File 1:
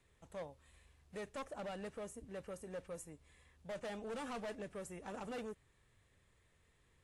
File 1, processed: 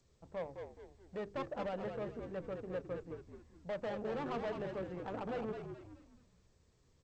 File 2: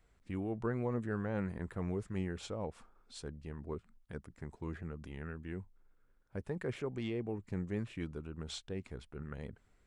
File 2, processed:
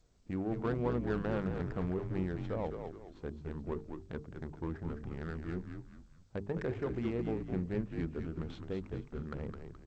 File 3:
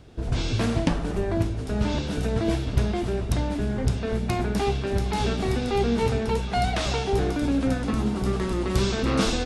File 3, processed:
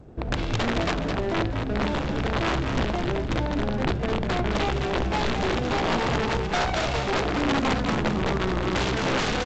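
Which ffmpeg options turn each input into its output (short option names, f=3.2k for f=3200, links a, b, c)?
-filter_complex "[0:a]lowshelf=f=87:g=-4.5,bandreject=f=50:t=h:w=6,bandreject=f=100:t=h:w=6,bandreject=f=150:t=h:w=6,bandreject=f=200:t=h:w=6,bandreject=f=250:t=h:w=6,bandreject=f=300:t=h:w=6,bandreject=f=350:t=h:w=6,bandreject=f=400:t=h:w=6,bandreject=f=450:t=h:w=6,asplit=2[a][b];[b]acompressor=threshold=-40dB:ratio=5,volume=-0.5dB[c];[a][c]amix=inputs=2:normalize=0,aeval=exprs='(mod(7.94*val(0)+1,2)-1)/7.94':c=same,adynamicsmooth=sensitivity=4.5:basefreq=740,asplit=2[d][e];[e]asplit=5[f][g][h][i][j];[f]adelay=212,afreqshift=-62,volume=-6dB[k];[g]adelay=424,afreqshift=-124,volume=-14.4dB[l];[h]adelay=636,afreqshift=-186,volume=-22.8dB[m];[i]adelay=848,afreqshift=-248,volume=-31.2dB[n];[j]adelay=1060,afreqshift=-310,volume=-39.6dB[o];[k][l][m][n][o]amix=inputs=5:normalize=0[p];[d][p]amix=inputs=2:normalize=0" -ar 16000 -c:a g722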